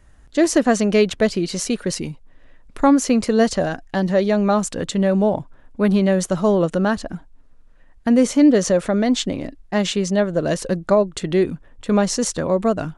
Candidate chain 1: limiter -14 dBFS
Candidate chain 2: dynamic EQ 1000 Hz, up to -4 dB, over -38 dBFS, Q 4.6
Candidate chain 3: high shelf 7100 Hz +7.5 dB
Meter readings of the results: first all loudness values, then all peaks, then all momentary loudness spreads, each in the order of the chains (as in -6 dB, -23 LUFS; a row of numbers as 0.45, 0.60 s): -23.5, -19.0, -19.0 LUFS; -14.0, -3.5, -3.0 dBFS; 7, 10, 9 LU